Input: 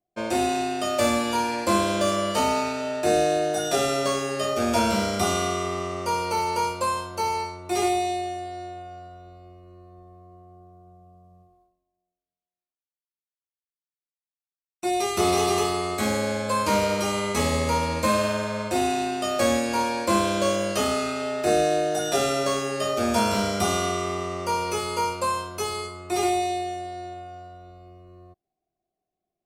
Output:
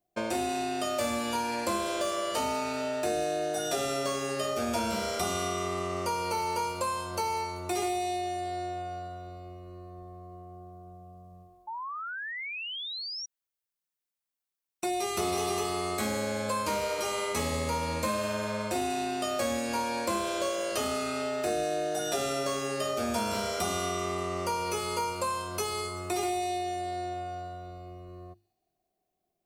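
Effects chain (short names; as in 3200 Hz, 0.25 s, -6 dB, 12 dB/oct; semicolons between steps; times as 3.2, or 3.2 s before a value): high shelf 12000 Hz +6 dB; notches 50/100/150/200/250/300/350 Hz; compressor 3:1, threshold -34 dBFS, peak gain reduction 12.5 dB; on a send: thin delay 0.193 s, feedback 51%, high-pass 4800 Hz, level -14 dB; on the sum: painted sound rise, 11.67–13.26, 860–5800 Hz -40 dBFS; gain +3 dB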